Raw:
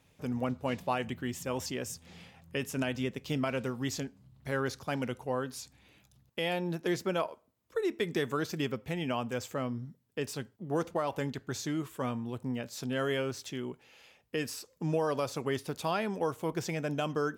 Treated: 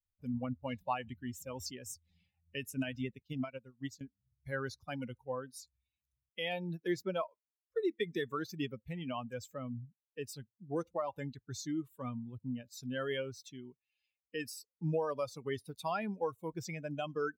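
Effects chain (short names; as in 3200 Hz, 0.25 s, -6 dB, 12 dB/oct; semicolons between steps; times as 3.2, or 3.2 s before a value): per-bin expansion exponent 2; 3.22–4.01 upward expander 2.5:1, over -46 dBFS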